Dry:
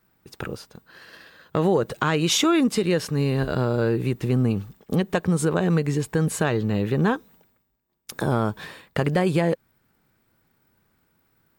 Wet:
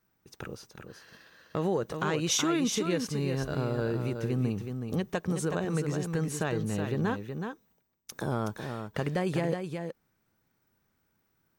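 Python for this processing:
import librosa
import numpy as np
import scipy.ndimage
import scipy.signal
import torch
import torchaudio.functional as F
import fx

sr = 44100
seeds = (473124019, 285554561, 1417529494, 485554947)

y = fx.peak_eq(x, sr, hz=6000.0, db=8.5, octaves=0.21)
y = y + 10.0 ** (-6.5 / 20.0) * np.pad(y, (int(372 * sr / 1000.0), 0))[:len(y)]
y = y * 10.0 ** (-8.5 / 20.0)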